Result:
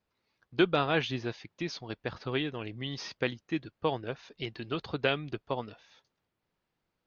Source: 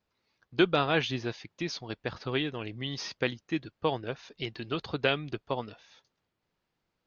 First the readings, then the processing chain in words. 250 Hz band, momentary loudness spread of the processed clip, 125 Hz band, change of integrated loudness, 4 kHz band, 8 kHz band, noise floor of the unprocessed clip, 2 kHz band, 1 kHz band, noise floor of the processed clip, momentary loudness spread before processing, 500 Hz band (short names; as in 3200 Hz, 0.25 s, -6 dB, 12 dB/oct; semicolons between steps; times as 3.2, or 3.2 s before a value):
-1.0 dB, 11 LU, -1.0 dB, -1.5 dB, -2.5 dB, n/a, -82 dBFS, -1.5 dB, -1.0 dB, -83 dBFS, 11 LU, -1.0 dB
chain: high shelf 5800 Hz -6 dB; gain -1 dB